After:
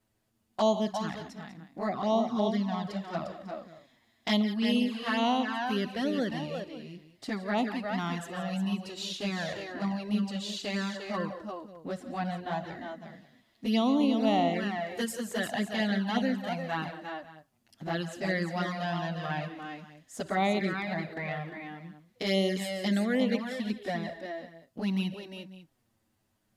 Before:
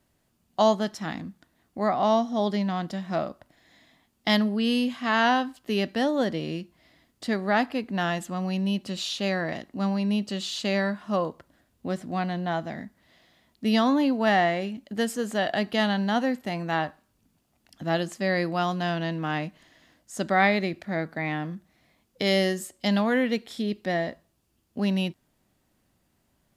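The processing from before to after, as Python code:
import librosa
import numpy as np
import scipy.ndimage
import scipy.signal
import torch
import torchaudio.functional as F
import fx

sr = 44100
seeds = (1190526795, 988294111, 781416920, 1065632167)

y = fx.high_shelf(x, sr, hz=6700.0, db=6.5, at=(14.78, 15.44))
y = fx.echo_multitap(y, sr, ms=(58, 139, 170, 352, 546), db=(-19.0, -16.0, -14.0, -6.5, -19.0))
y = fx.env_flanger(y, sr, rest_ms=9.4, full_db=-18.0)
y = y * 10.0 ** (-3.0 / 20.0)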